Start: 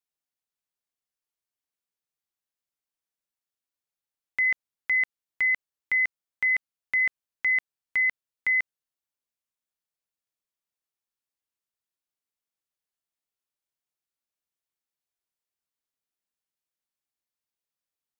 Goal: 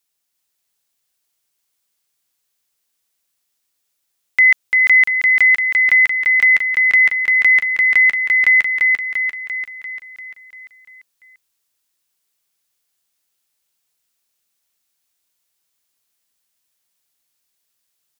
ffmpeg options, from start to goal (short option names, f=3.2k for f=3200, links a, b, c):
-af "highshelf=f=2.4k:g=9,aecho=1:1:344|688|1032|1376|1720|2064|2408|2752:0.708|0.396|0.222|0.124|0.0696|0.039|0.0218|0.0122,volume=9dB"